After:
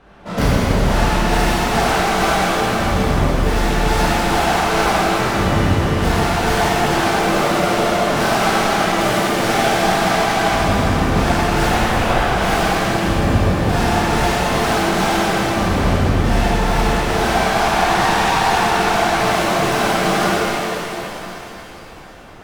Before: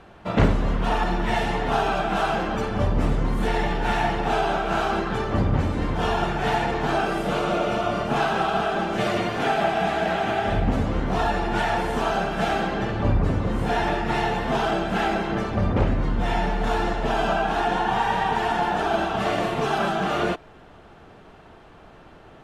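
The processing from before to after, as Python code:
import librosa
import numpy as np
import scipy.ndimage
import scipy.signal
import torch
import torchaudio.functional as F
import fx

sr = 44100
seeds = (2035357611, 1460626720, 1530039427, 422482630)

y = fx.tracing_dist(x, sr, depth_ms=0.43)
y = fx.lpc_vocoder(y, sr, seeds[0], excitation='whisper', order=10, at=(11.68, 12.26))
y = fx.rev_shimmer(y, sr, seeds[1], rt60_s=3.3, semitones=7, shimmer_db=-8, drr_db=-10.0)
y = F.gain(torch.from_numpy(y), -3.5).numpy()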